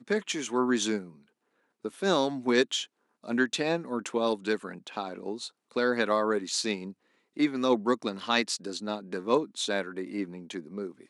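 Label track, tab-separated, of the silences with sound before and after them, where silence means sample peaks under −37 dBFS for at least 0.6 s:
1.050000	1.850000	silence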